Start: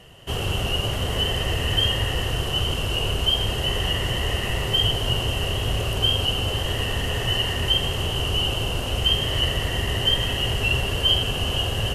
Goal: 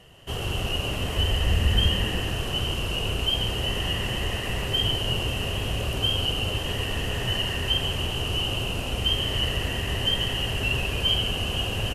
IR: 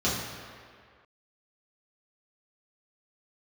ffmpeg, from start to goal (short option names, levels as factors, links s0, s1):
-filter_complex "[0:a]asettb=1/sr,asplit=3[s0][s1][s2];[s0]atrim=end=1.184[s3];[s1]atrim=start=1.18:end=1.89,asetpts=PTS-STARTPTS,afade=t=in:d=0.004:c=qsin,afade=t=out:st=0.706:d=0.004:c=qsin,lowshelf=f=110:t=q:w=1.5:g=7[s4];[s2]atrim=start=1.886[s5];[s3][s4]acrossfade=d=0.004:c1=hsin:c2=qsin[s6];[s6][s5]acrossfade=d=0.004:c1=qsin:c2=hsin,asplit=7[s7][s8][s9][s10][s11][s12][s13];[s8]adelay=138,afreqshift=-130,volume=0.398[s14];[s9]adelay=276,afreqshift=-260,volume=0.195[s15];[s10]adelay=414,afreqshift=-390,volume=0.0955[s16];[s11]adelay=552,afreqshift=-520,volume=0.0468[s17];[s12]adelay=690,afreqshift=-650,volume=0.0229[s18];[s13]adelay=828,afreqshift=-780,volume=0.0112[s19];[s7][s14][s15][s16][s17][s18][s19]amix=inputs=7:normalize=0,volume=0.631"